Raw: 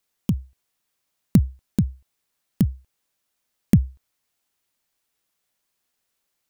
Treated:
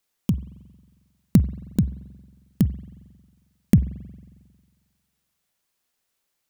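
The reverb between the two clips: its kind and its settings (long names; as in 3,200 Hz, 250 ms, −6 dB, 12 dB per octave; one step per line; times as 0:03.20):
spring reverb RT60 1.6 s, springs 45 ms, chirp 60 ms, DRR 16.5 dB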